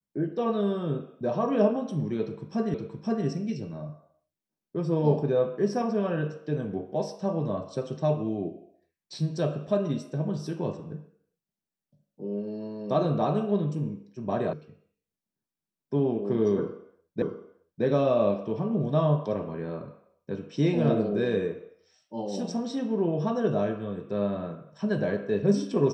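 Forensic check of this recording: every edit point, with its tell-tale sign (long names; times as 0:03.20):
0:02.74: the same again, the last 0.52 s
0:14.53: cut off before it has died away
0:17.22: the same again, the last 0.62 s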